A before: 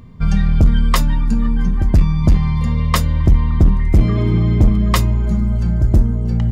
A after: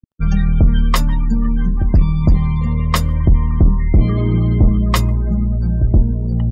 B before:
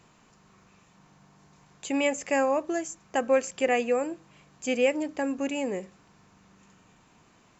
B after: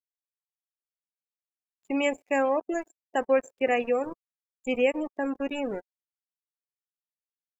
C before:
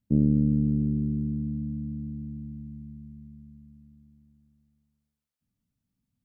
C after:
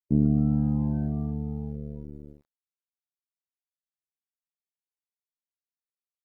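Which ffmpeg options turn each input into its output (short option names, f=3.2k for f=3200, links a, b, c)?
-af "aecho=1:1:148:0.0668,aeval=exprs='val(0)*gte(abs(val(0)),0.0266)':c=same,afftdn=nr=32:nf=-33"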